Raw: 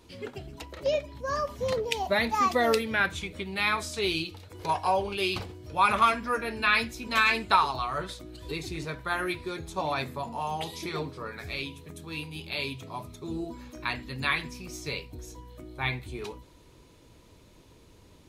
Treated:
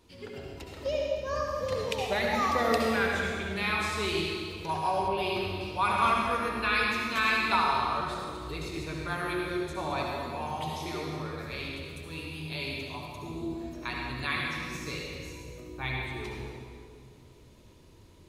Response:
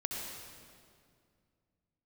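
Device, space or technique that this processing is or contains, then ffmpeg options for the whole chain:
stairwell: -filter_complex "[1:a]atrim=start_sample=2205[link_01];[0:a][link_01]afir=irnorm=-1:irlink=0,asettb=1/sr,asplit=3[link_02][link_03][link_04];[link_02]atrim=end=5.084[link_05];[link_03]atrim=start=5.08:end=5.61,asetpts=PTS-STARTPTS,afade=type=in:duration=0.004:curve=qsin,afade=type=out:start_time=0.526:duration=0.004:curve=qsin,equalizer=frequency=7200:width_type=o:width=1:gain=-10[link_06];[link_04]atrim=start=5.606[link_07];[link_05][link_06]acrossfade=duration=0.004:curve1=hsin:curve2=qsin[link_08];[link_08][link_07]acrossfade=duration=0.004:curve1=qsin:curve2=hsin,volume=-4dB"

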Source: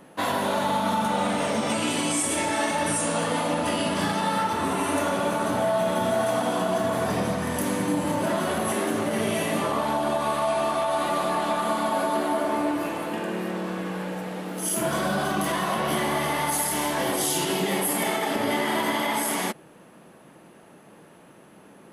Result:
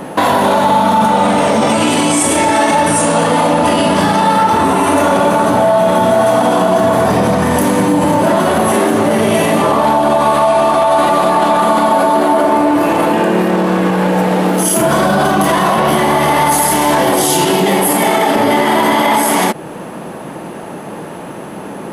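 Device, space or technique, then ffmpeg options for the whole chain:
mastering chain: -af "equalizer=frequency=870:width_type=o:width=0.52:gain=3.5,acompressor=threshold=-33dB:ratio=1.5,tiltshelf=frequency=810:gain=4,asoftclip=type=hard:threshold=-19dB,alimiter=level_in=24.5dB:limit=-1dB:release=50:level=0:latency=1,lowshelf=frequency=360:gain=-5,volume=-1dB"

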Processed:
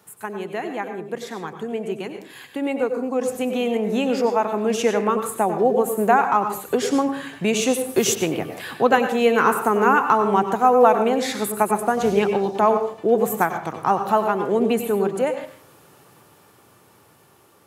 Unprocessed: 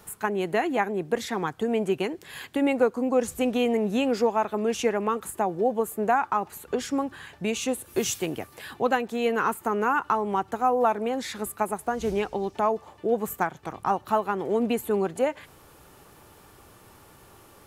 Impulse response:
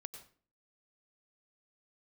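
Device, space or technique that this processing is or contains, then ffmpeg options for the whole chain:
far laptop microphone: -filter_complex "[1:a]atrim=start_sample=2205[link_01];[0:a][link_01]afir=irnorm=-1:irlink=0,highpass=frequency=100:width=0.5412,highpass=frequency=100:width=1.3066,dynaudnorm=framelen=970:gausssize=9:maxgain=12dB,asettb=1/sr,asplit=3[link_02][link_03][link_04];[link_02]atrim=end=8.154[link_05];[link_03]atrim=start=8.15:end=8.94,asetpts=PTS-STARTPTS,afade=type=in:duration=0.004:curve=qsin,afade=type=out:start_time=0.786:duration=0.004:curve=qsin,adynamicequalizer=threshold=0.00708:dfrequency=4400:dqfactor=0.7:tfrequency=4400:tqfactor=0.7:attack=5:release=100:ratio=0.375:range=3:mode=cutabove:tftype=highshelf[link_06];[link_04]atrim=start=8.936[link_07];[link_05][link_06]acrossfade=duration=0.004:curve1=hsin:curve2=qsin[link_08];[link_08][link_07]acrossfade=duration=0.004:curve1=qsin:curve2=hsin,volume=1dB"

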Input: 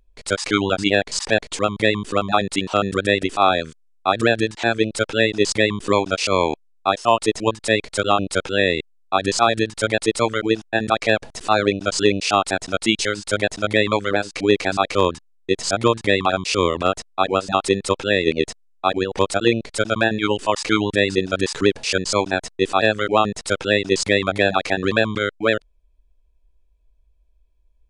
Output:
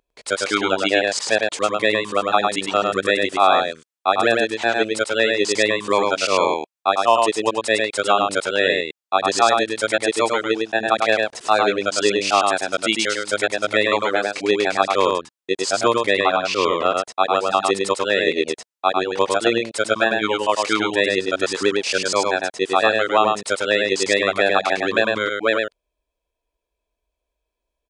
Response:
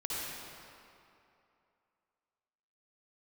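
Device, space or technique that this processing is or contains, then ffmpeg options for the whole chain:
filter by subtraction: -filter_complex "[0:a]asplit=2[link_01][link_02];[link_02]lowpass=670,volume=-1[link_03];[link_01][link_03]amix=inputs=2:normalize=0,asettb=1/sr,asplit=3[link_04][link_05][link_06];[link_04]atrim=end=16.134[link_07];[link_05]atrim=start=16.13:end=16.95,asetpts=PTS-STARTPTS,afade=type=in:duration=0.004:curve=qsin,afade=type=out:start_time=0.816:duration=0.004:curve=qsin,lowpass=5300[link_08];[link_06]atrim=start=16.946[link_09];[link_07][link_08]acrossfade=duration=0.004:curve1=hsin:curve2=qsin[link_10];[link_10][link_09]acrossfade=duration=0.004:curve1=qsin:curve2=hsin,aecho=1:1:103:0.668,volume=-1dB"

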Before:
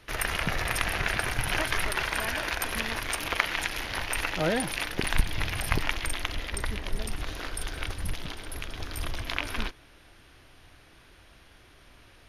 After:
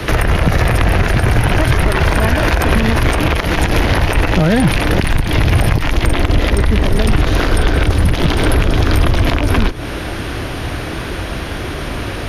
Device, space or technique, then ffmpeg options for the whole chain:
mastering chain: -filter_complex "[0:a]highpass=frequency=58:poles=1,equalizer=frequency=840:width_type=o:width=0.77:gain=-1.5,acrossover=split=160|870|4400[link_01][link_02][link_03][link_04];[link_01]acompressor=threshold=-39dB:ratio=4[link_05];[link_02]acompressor=threshold=-48dB:ratio=4[link_06];[link_03]acompressor=threshold=-45dB:ratio=4[link_07];[link_04]acompressor=threshold=-54dB:ratio=4[link_08];[link_05][link_06][link_07][link_08]amix=inputs=4:normalize=0,acompressor=threshold=-45dB:ratio=2,tiltshelf=frequency=1200:gain=5,asoftclip=type=hard:threshold=-30.5dB,alimiter=level_in=34.5dB:limit=-1dB:release=50:level=0:latency=1,volume=-2.5dB"

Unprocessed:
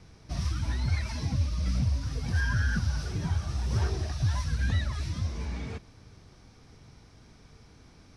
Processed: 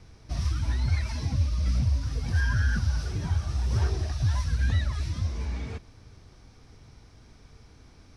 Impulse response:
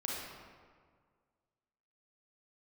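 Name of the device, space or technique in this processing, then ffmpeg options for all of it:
low shelf boost with a cut just above: -af "lowshelf=frequency=85:gain=5.5,equalizer=frequency=170:width_type=o:width=0.56:gain=-4"

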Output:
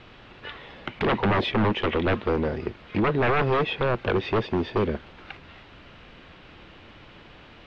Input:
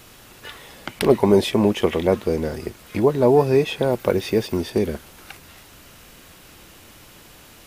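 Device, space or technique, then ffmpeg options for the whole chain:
synthesiser wavefolder: -af "aeval=exprs='0.15*(abs(mod(val(0)/0.15+3,4)-2)-1)':channel_layout=same,lowpass=frequency=3500:width=0.5412,lowpass=frequency=3500:width=1.3066"

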